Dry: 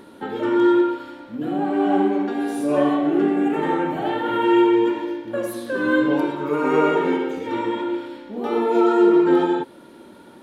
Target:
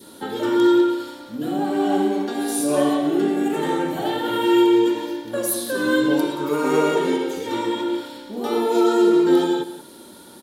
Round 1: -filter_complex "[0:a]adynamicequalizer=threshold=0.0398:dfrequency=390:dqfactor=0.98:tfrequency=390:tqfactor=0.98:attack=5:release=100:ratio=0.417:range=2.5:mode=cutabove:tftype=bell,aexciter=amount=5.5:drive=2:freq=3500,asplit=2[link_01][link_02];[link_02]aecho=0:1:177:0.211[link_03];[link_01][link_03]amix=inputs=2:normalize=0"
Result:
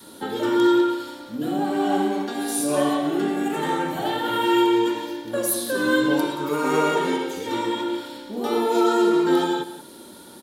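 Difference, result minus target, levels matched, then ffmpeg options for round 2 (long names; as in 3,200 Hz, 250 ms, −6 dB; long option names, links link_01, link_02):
1,000 Hz band +3.0 dB
-filter_complex "[0:a]adynamicequalizer=threshold=0.0398:dfrequency=1100:dqfactor=0.98:tfrequency=1100:tqfactor=0.98:attack=5:release=100:ratio=0.417:range=2.5:mode=cutabove:tftype=bell,aexciter=amount=5.5:drive=2:freq=3500,asplit=2[link_01][link_02];[link_02]aecho=0:1:177:0.211[link_03];[link_01][link_03]amix=inputs=2:normalize=0"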